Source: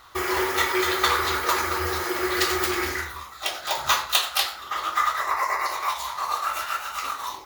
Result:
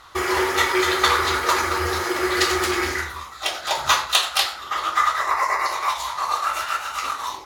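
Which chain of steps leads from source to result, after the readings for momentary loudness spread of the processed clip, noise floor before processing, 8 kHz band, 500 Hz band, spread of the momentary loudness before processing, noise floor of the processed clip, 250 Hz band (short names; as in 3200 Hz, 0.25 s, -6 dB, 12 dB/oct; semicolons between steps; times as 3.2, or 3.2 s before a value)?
8 LU, -41 dBFS, +3.0 dB, +3.5 dB, 8 LU, -37 dBFS, +3.5 dB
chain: LPF 11000 Hz 12 dB/oct; gain +3.5 dB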